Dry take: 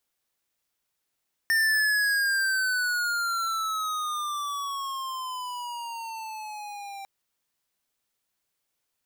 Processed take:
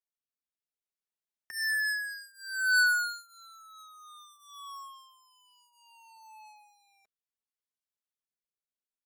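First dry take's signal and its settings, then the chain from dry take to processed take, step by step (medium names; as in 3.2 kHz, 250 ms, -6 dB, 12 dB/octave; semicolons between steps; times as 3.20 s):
gliding synth tone square, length 5.55 s, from 1.81 kHz, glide -14.5 st, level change -17 dB, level -22 dB
comb 4.7 ms, depth 71%; rotary cabinet horn 0.6 Hz; upward expansion 2.5:1, over -35 dBFS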